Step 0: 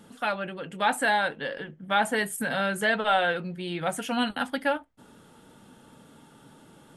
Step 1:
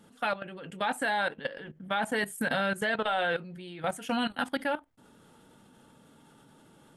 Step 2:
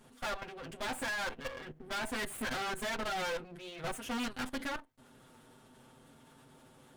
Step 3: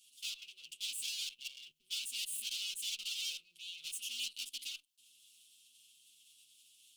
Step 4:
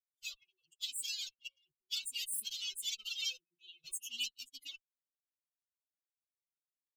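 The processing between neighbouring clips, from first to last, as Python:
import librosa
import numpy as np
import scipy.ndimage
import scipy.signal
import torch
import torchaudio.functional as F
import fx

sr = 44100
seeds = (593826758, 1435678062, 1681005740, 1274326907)

y1 = fx.level_steps(x, sr, step_db=15)
y1 = y1 * 10.0 ** (2.0 / 20.0)
y2 = fx.lower_of_two(y1, sr, delay_ms=7.8)
y2 = np.clip(10.0 ** (33.5 / 20.0) * y2, -1.0, 1.0) / 10.0 ** (33.5 / 20.0)
y3 = scipy.signal.sosfilt(scipy.signal.ellip(4, 1.0, 40, 2800.0, 'highpass', fs=sr, output='sos'), y2)
y3 = y3 * 10.0 ** (5.5 / 20.0)
y4 = fx.bin_expand(y3, sr, power=3.0)
y4 = y4 * 10.0 ** (7.5 / 20.0)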